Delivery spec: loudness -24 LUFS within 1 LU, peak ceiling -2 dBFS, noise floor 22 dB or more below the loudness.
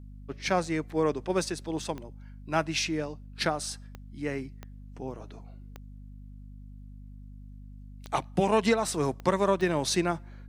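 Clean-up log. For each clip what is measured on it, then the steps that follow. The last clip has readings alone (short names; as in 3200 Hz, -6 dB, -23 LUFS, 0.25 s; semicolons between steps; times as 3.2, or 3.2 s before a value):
clicks 7; hum 50 Hz; harmonics up to 250 Hz; hum level -43 dBFS; loudness -29.5 LUFS; peak -10.5 dBFS; loudness target -24.0 LUFS
-> de-click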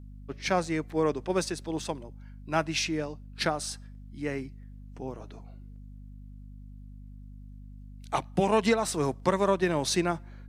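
clicks 0; hum 50 Hz; harmonics up to 250 Hz; hum level -43 dBFS
-> de-hum 50 Hz, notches 5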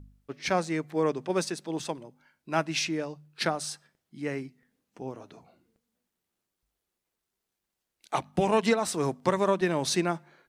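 hum none; loudness -29.0 LUFS; peak -10.5 dBFS; loudness target -24.0 LUFS
-> gain +5 dB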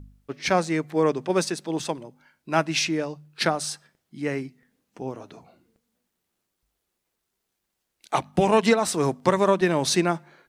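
loudness -24.0 LUFS; peak -5.5 dBFS; noise floor -80 dBFS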